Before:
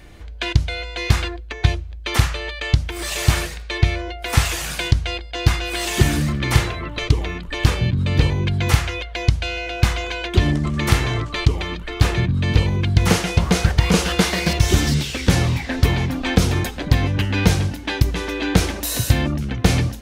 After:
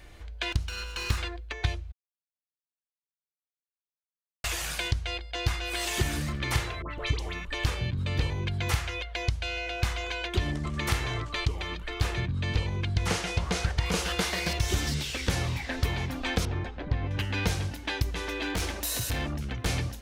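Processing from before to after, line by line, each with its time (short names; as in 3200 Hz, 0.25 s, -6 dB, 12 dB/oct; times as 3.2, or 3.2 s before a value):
0.52–1.18 minimum comb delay 0.73 ms
1.92–4.44 mute
6.82–7.45 dispersion highs, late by 89 ms, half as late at 1400 Hz
12.21–13.86 LPF 10000 Hz
16.45–17.11 tape spacing loss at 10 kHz 32 dB
18.21–19.66 hard clip -16.5 dBFS
whole clip: bell 200 Hz -6.5 dB 1.9 oct; compressor 1.5:1, threshold -25 dBFS; gain -5 dB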